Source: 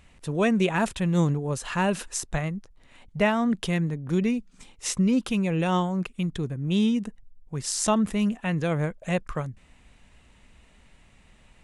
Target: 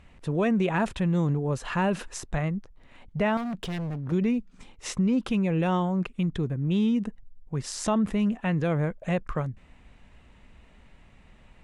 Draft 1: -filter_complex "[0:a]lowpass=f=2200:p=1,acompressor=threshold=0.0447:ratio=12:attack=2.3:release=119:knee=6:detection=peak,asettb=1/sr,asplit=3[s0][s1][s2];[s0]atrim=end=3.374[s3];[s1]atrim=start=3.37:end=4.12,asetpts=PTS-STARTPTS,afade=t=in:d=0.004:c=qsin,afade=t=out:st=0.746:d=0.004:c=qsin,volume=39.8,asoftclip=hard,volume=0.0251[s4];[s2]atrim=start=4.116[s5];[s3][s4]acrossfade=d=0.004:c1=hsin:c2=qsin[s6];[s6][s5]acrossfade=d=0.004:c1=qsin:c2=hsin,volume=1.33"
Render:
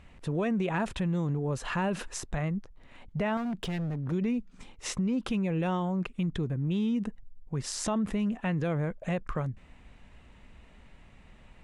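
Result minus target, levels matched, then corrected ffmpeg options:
compression: peak gain reduction +5.5 dB
-filter_complex "[0:a]lowpass=f=2200:p=1,acompressor=threshold=0.0891:ratio=12:attack=2.3:release=119:knee=6:detection=peak,asettb=1/sr,asplit=3[s0][s1][s2];[s0]atrim=end=3.374[s3];[s1]atrim=start=3.37:end=4.12,asetpts=PTS-STARTPTS,afade=t=in:d=0.004:c=qsin,afade=t=out:st=0.746:d=0.004:c=qsin,volume=39.8,asoftclip=hard,volume=0.0251[s4];[s2]atrim=start=4.116[s5];[s3][s4]acrossfade=d=0.004:c1=hsin:c2=qsin[s6];[s6][s5]acrossfade=d=0.004:c1=qsin:c2=hsin,volume=1.33"

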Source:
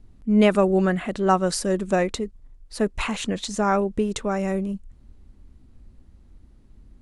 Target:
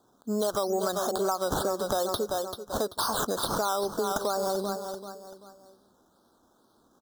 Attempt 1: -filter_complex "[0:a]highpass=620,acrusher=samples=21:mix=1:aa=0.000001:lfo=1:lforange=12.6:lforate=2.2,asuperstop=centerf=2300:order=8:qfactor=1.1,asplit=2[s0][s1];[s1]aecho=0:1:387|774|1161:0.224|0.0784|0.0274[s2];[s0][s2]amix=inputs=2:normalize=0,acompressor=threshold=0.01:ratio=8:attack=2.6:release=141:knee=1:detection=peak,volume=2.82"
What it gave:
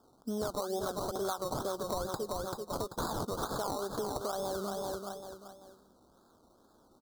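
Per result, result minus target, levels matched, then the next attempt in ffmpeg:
compression: peak gain reduction +8 dB; decimation with a swept rate: distortion +11 dB
-filter_complex "[0:a]highpass=620,acrusher=samples=21:mix=1:aa=0.000001:lfo=1:lforange=12.6:lforate=2.2,asuperstop=centerf=2300:order=8:qfactor=1.1,asplit=2[s0][s1];[s1]aecho=0:1:387|774|1161:0.224|0.0784|0.0274[s2];[s0][s2]amix=inputs=2:normalize=0,acompressor=threshold=0.0251:ratio=8:attack=2.6:release=141:knee=1:detection=peak,volume=2.82"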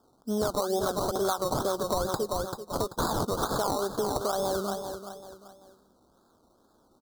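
decimation with a swept rate: distortion +11 dB
-filter_complex "[0:a]highpass=620,acrusher=samples=8:mix=1:aa=0.000001:lfo=1:lforange=4.8:lforate=2.2,asuperstop=centerf=2300:order=8:qfactor=1.1,asplit=2[s0][s1];[s1]aecho=0:1:387|774|1161:0.224|0.0784|0.0274[s2];[s0][s2]amix=inputs=2:normalize=0,acompressor=threshold=0.0251:ratio=8:attack=2.6:release=141:knee=1:detection=peak,volume=2.82"

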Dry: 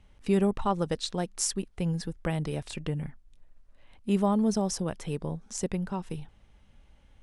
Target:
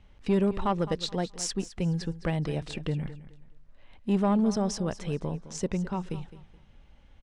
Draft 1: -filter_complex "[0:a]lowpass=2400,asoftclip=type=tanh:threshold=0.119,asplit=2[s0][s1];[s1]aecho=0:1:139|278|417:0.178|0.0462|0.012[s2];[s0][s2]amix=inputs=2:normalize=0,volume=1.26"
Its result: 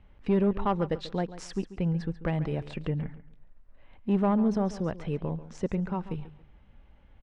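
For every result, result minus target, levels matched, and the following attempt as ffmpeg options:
8 kHz band -14.0 dB; echo 73 ms early
-filter_complex "[0:a]lowpass=5800,asoftclip=type=tanh:threshold=0.119,asplit=2[s0][s1];[s1]aecho=0:1:139|278|417:0.178|0.0462|0.012[s2];[s0][s2]amix=inputs=2:normalize=0,volume=1.26"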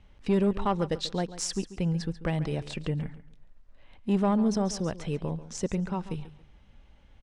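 echo 73 ms early
-filter_complex "[0:a]lowpass=5800,asoftclip=type=tanh:threshold=0.119,asplit=2[s0][s1];[s1]aecho=0:1:212|424|636:0.178|0.0462|0.012[s2];[s0][s2]amix=inputs=2:normalize=0,volume=1.26"

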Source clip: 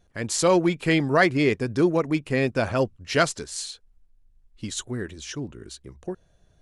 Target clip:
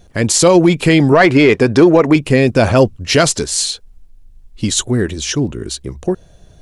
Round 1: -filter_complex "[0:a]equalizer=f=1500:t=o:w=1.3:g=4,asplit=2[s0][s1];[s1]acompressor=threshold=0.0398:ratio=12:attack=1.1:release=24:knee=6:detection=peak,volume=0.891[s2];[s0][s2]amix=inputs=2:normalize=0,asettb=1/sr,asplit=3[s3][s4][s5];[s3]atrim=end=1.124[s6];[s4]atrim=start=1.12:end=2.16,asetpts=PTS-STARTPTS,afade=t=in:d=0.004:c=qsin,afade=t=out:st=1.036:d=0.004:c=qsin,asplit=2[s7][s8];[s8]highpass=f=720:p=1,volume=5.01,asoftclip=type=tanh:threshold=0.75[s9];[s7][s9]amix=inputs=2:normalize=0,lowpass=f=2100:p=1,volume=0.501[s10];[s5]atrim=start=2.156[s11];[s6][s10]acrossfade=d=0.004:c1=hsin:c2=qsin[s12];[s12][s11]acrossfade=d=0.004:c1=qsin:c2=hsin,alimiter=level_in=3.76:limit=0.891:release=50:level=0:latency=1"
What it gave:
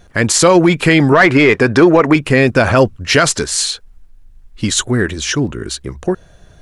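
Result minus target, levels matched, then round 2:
2 kHz band +4.0 dB
-filter_complex "[0:a]equalizer=f=1500:t=o:w=1.3:g=-4.5,asplit=2[s0][s1];[s1]acompressor=threshold=0.0398:ratio=12:attack=1.1:release=24:knee=6:detection=peak,volume=0.891[s2];[s0][s2]amix=inputs=2:normalize=0,asettb=1/sr,asplit=3[s3][s4][s5];[s3]atrim=end=1.124[s6];[s4]atrim=start=1.12:end=2.16,asetpts=PTS-STARTPTS,afade=t=in:d=0.004:c=qsin,afade=t=out:st=1.036:d=0.004:c=qsin,asplit=2[s7][s8];[s8]highpass=f=720:p=1,volume=5.01,asoftclip=type=tanh:threshold=0.75[s9];[s7][s9]amix=inputs=2:normalize=0,lowpass=f=2100:p=1,volume=0.501[s10];[s5]atrim=start=2.156[s11];[s6][s10]acrossfade=d=0.004:c1=hsin:c2=qsin[s12];[s12][s11]acrossfade=d=0.004:c1=qsin:c2=hsin,alimiter=level_in=3.76:limit=0.891:release=50:level=0:latency=1"

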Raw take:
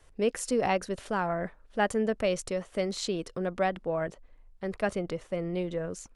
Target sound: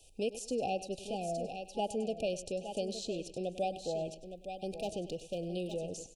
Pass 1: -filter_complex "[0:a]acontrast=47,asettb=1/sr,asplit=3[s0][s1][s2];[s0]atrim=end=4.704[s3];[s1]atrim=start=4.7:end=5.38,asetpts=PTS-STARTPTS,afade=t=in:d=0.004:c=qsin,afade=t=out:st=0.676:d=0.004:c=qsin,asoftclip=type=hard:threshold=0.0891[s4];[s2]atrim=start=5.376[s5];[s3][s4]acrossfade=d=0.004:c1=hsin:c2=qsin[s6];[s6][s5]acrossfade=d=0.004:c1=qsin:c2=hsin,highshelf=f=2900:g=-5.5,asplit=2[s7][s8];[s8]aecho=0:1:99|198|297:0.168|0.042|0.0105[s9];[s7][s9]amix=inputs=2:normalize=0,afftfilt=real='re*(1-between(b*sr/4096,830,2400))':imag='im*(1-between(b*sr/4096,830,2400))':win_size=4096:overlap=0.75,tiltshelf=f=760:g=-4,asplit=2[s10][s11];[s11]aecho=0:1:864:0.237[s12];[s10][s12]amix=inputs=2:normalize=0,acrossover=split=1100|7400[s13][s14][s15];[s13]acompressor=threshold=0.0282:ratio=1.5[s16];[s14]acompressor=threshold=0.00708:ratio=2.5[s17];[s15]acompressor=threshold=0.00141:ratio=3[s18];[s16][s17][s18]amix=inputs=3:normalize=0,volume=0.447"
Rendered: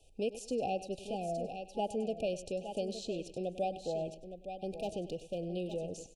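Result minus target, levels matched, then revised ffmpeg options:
8 kHz band -4.5 dB
-filter_complex "[0:a]acontrast=47,asettb=1/sr,asplit=3[s0][s1][s2];[s0]atrim=end=4.704[s3];[s1]atrim=start=4.7:end=5.38,asetpts=PTS-STARTPTS,afade=t=in:d=0.004:c=qsin,afade=t=out:st=0.676:d=0.004:c=qsin,asoftclip=type=hard:threshold=0.0891[s4];[s2]atrim=start=5.376[s5];[s3][s4]acrossfade=d=0.004:c1=hsin:c2=qsin[s6];[s6][s5]acrossfade=d=0.004:c1=qsin:c2=hsin,highshelf=f=2900:g=5.5,asplit=2[s7][s8];[s8]aecho=0:1:99|198|297:0.168|0.042|0.0105[s9];[s7][s9]amix=inputs=2:normalize=0,afftfilt=real='re*(1-between(b*sr/4096,830,2400))':imag='im*(1-between(b*sr/4096,830,2400))':win_size=4096:overlap=0.75,tiltshelf=f=760:g=-4,asplit=2[s10][s11];[s11]aecho=0:1:864:0.237[s12];[s10][s12]amix=inputs=2:normalize=0,acrossover=split=1100|7400[s13][s14][s15];[s13]acompressor=threshold=0.0282:ratio=1.5[s16];[s14]acompressor=threshold=0.00708:ratio=2.5[s17];[s15]acompressor=threshold=0.00141:ratio=3[s18];[s16][s17][s18]amix=inputs=3:normalize=0,volume=0.447"

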